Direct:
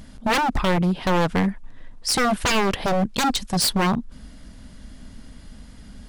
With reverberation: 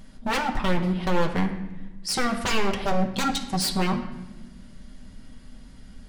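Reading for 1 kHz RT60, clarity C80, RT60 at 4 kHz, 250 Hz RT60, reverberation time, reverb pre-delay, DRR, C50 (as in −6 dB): 0.95 s, 11.5 dB, 0.80 s, 1.8 s, 1.0 s, 5 ms, 1.0 dB, 9.5 dB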